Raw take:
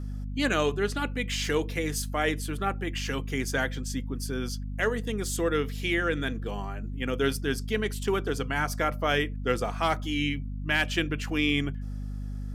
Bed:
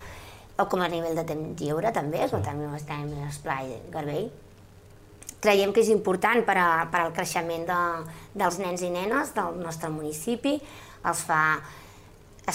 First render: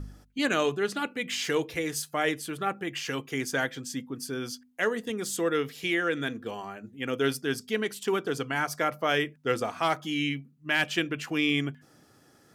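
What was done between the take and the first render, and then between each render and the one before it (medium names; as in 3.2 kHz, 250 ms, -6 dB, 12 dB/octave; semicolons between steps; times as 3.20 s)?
de-hum 50 Hz, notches 5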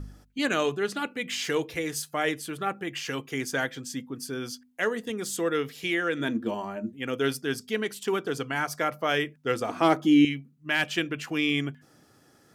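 6.18–6.91 s: small resonant body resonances 230/330/600/920 Hz, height 12 dB -> 15 dB, ringing for 85 ms; 9.69–10.25 s: peaking EQ 320 Hz +14 dB 1.6 oct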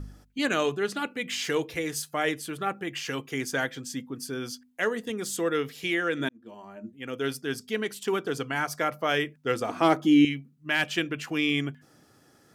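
6.29–8.30 s: fade in equal-power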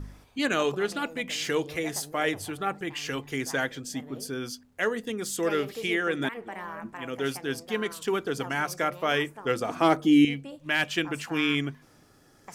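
add bed -17 dB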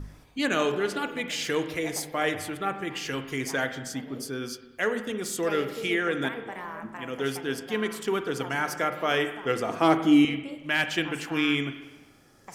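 spring tank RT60 1.1 s, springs 37/46 ms, chirp 75 ms, DRR 8.5 dB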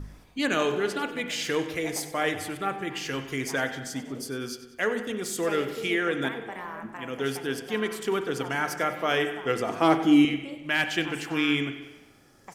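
feedback delay 95 ms, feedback 49%, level -15.5 dB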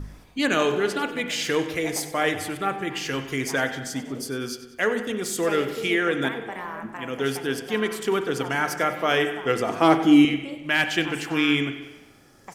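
trim +3.5 dB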